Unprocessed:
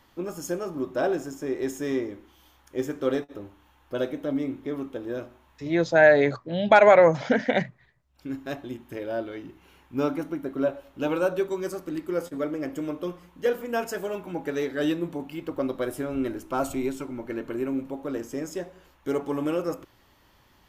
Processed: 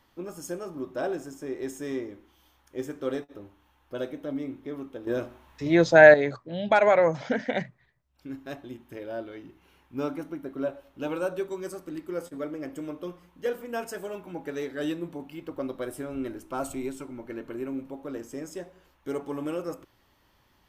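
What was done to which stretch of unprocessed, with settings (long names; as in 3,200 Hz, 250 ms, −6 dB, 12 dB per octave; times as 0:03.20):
0:05.07–0:06.14: clip gain +8.5 dB
whole clip: notch filter 7,000 Hz, Q 23; dynamic equaliser 8,500 Hz, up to +6 dB, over −59 dBFS, Q 2.6; level −5 dB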